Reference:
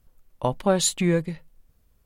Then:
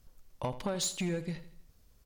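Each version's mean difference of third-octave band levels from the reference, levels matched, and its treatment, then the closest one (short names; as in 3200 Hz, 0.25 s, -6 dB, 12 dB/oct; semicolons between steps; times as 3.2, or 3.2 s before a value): 7.0 dB: bell 5400 Hz +7 dB 1.1 oct; compressor 16:1, threshold -27 dBFS, peak gain reduction 14 dB; soft clip -25.5 dBFS, distortion -14 dB; on a send: feedback echo 81 ms, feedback 44%, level -14.5 dB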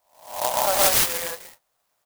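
17.5 dB: spectral swells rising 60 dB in 0.51 s; elliptic band-pass 680–7400 Hz; loudspeakers at several distances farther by 42 m -1 dB, 58 m -1 dB; clock jitter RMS 0.12 ms; gain +2 dB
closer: first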